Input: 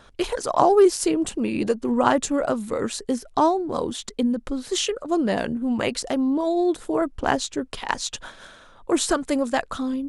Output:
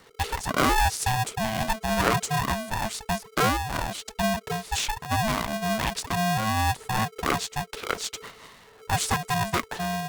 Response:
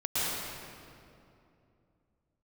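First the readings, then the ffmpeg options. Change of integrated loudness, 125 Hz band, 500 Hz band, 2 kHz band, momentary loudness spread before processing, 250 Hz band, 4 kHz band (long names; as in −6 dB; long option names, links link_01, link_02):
−3.5 dB, +11.0 dB, −9.5 dB, +4.0 dB, 9 LU, −8.5 dB, +0.5 dB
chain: -filter_complex "[0:a]acrossover=split=130|990|3300[link_01][link_02][link_03][link_04];[link_02]asoftclip=type=hard:threshold=-16.5dB[link_05];[link_01][link_05][link_03][link_04]amix=inputs=4:normalize=0,aeval=exprs='val(0)*sgn(sin(2*PI*440*n/s))':channel_layout=same,volume=-3dB"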